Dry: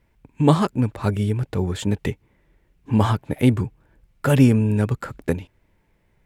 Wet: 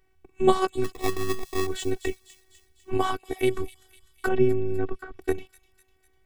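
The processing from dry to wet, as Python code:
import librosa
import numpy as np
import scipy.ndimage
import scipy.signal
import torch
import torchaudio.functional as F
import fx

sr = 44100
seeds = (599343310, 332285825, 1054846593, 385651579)

y = fx.low_shelf(x, sr, hz=140.0, db=-10.5, at=(2.97, 3.57))
y = fx.robotise(y, sr, hz=376.0)
y = fx.sample_hold(y, sr, seeds[0], rate_hz=1500.0, jitter_pct=0, at=(0.84, 1.67))
y = fx.spacing_loss(y, sr, db_at_10k=38, at=(4.27, 5.17), fade=0.02)
y = fx.echo_wet_highpass(y, sr, ms=250, feedback_pct=54, hz=4300.0, wet_db=-9.5)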